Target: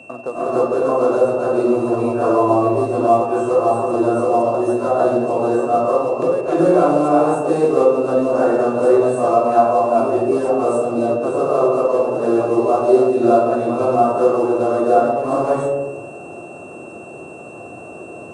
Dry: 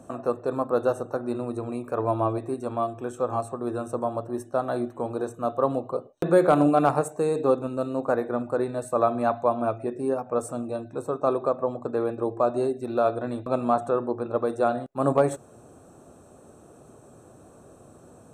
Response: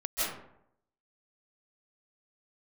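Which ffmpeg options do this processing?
-filter_complex "[0:a]highpass=frequency=69:width=0.5412,highpass=frequency=69:width=1.3066,equalizer=frequency=600:width_type=o:width=2.3:gain=8,asplit=2[link_01][link_02];[link_02]acompressor=threshold=-26dB:ratio=12,volume=-2.5dB[link_03];[link_01][link_03]amix=inputs=2:normalize=0,alimiter=limit=-8.5dB:level=0:latency=1:release=357,acrusher=bits=7:mode=log:mix=0:aa=0.000001,aresample=22050,aresample=44100[link_04];[1:a]atrim=start_sample=2205,asetrate=23814,aresample=44100[link_05];[link_04][link_05]afir=irnorm=-1:irlink=0,aeval=exprs='val(0)+0.0251*sin(2*PI*2700*n/s)':channel_layout=same,volume=-8.5dB"

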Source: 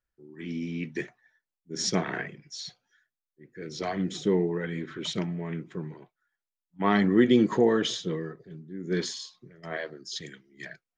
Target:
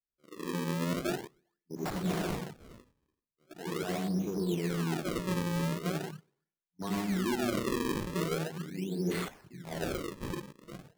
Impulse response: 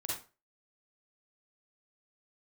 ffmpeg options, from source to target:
-filter_complex "[0:a]asplit=2[link_01][link_02];[link_02]aeval=exprs='0.0596*(abs(mod(val(0)/0.0596+3,4)-2)-1)':channel_layout=same,volume=-4dB[link_03];[link_01][link_03]amix=inputs=2:normalize=0[link_04];[1:a]atrim=start_sample=2205,asetrate=23814,aresample=44100[link_05];[link_04][link_05]afir=irnorm=-1:irlink=0,afwtdn=0.0447,acrossover=split=330[link_06][link_07];[link_07]acompressor=threshold=-24dB:ratio=6[link_08];[link_06][link_08]amix=inputs=2:normalize=0,acrusher=samples=35:mix=1:aa=0.000001:lfo=1:lforange=56:lforate=0.41,areverse,acompressor=threshold=-23dB:ratio=6,areverse,volume=-6dB"

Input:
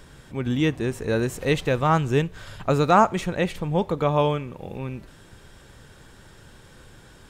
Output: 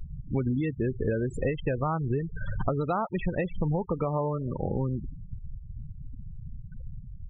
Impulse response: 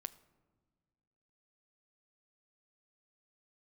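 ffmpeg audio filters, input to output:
-filter_complex "[0:a]lowshelf=frequency=65:gain=7.5,alimiter=limit=-14dB:level=0:latency=1:release=319,asplit=2[link_01][link_02];[1:a]atrim=start_sample=2205[link_03];[link_02][link_03]afir=irnorm=-1:irlink=0,volume=-4dB[link_04];[link_01][link_04]amix=inputs=2:normalize=0,acompressor=threshold=-28dB:ratio=16,afftfilt=real='re*gte(hypot(re,im),0.0282)':imag='im*gte(hypot(re,im),0.0282)':win_size=1024:overlap=0.75,volume=4.5dB"

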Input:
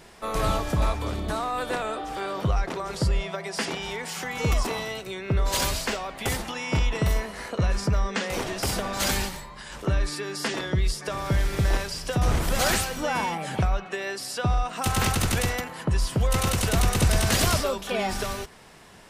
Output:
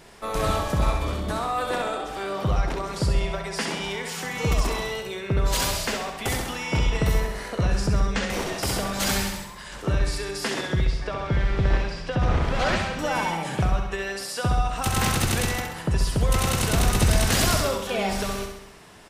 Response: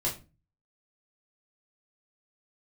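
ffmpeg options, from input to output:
-filter_complex "[0:a]asettb=1/sr,asplit=3[link_01][link_02][link_03];[link_01]atrim=end=10.844[link_04];[link_02]atrim=start=10.84:end=12.99,asetpts=PTS-STARTPTS,afade=type=in:duration=0.004:curve=qsin,afade=type=out:start_time=2.146:duration=0.004:curve=qsin,lowpass=3300[link_05];[link_03]atrim=start=12.986[link_06];[link_04][link_05]acrossfade=duration=0.004:curve1=hsin:curve2=qsin[link_07];[link_07][link_06]acrossfade=duration=0.004:curve1=qsin:curve2=hsin,aecho=1:1:66|132|198|264|330|396|462:0.501|0.286|0.163|0.0928|0.0529|0.0302|0.0172"

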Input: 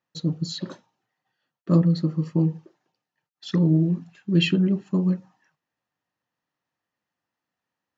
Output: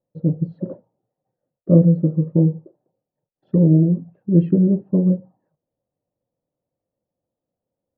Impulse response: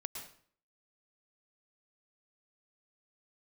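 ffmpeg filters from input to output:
-af "lowpass=frequency=550:width_type=q:width=4.1,aemphasis=mode=reproduction:type=bsi,volume=-2dB"

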